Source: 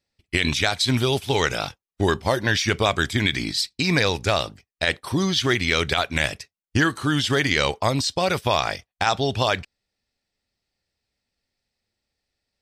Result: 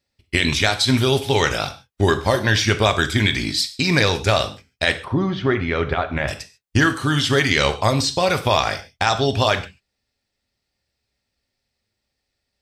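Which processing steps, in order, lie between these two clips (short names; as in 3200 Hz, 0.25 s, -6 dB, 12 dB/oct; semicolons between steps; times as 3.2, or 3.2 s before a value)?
5.04–6.28 LPF 1500 Hz 12 dB/oct; non-linear reverb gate 0.17 s falling, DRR 7.5 dB; gain +2.5 dB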